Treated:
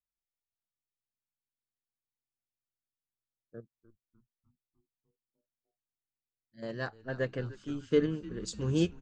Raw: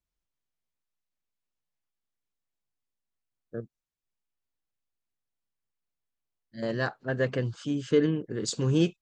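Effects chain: frequency-shifting echo 301 ms, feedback 60%, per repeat -120 Hz, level -12.5 dB; upward expansion 1.5:1, over -42 dBFS; trim -2.5 dB

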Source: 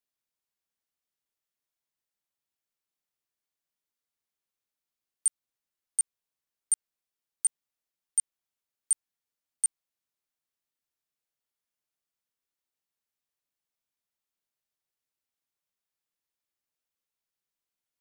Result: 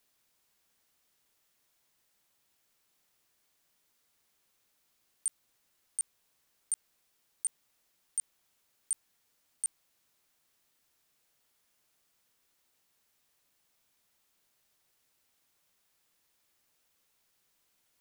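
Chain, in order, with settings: compressor with a negative ratio -30 dBFS, ratio -0.5; trim +4 dB

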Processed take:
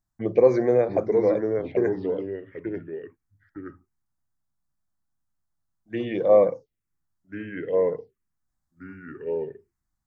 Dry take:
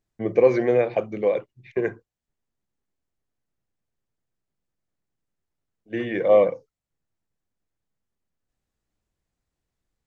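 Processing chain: ever faster or slower copies 666 ms, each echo -2 st, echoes 2, each echo -6 dB; touch-sensitive phaser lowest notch 450 Hz, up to 2.9 kHz, full sweep at -20 dBFS

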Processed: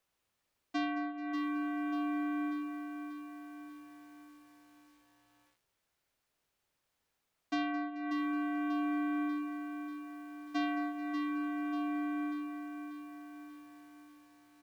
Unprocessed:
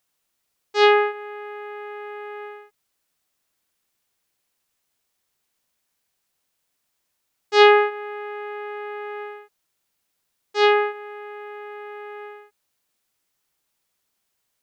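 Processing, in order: compression 16:1, threshold -30 dBFS, peak gain reduction 22 dB; treble shelf 4.2 kHz -10 dB; on a send: feedback delay 217 ms, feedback 54%, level -15 dB; on the sum: frequency shift -120 Hz; bit-crushed delay 589 ms, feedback 55%, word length 10-bit, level -7 dB; trim -1.5 dB

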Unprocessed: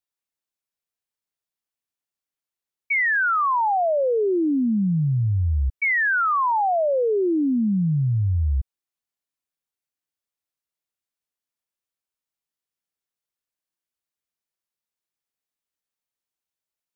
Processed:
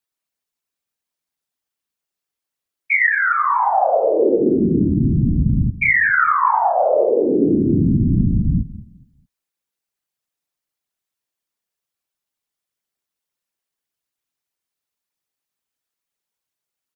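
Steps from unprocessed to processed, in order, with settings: 3.09–3.59 s: treble shelf 2.1 kHz -7 dB; on a send: feedback delay 211 ms, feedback 28%, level -17 dB; on the sum: frequency shift +29 Hz; whisper effect; trim +5 dB

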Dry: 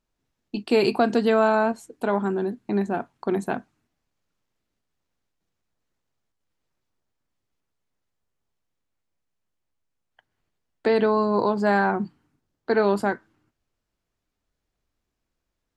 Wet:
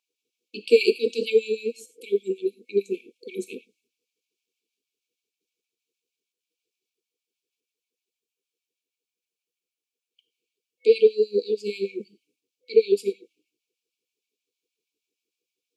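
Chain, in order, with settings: gated-style reverb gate 120 ms flat, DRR 10.5 dB; FFT band-reject 500–2200 Hz; LFO high-pass sine 6.4 Hz 430–1900 Hz; trim +1 dB

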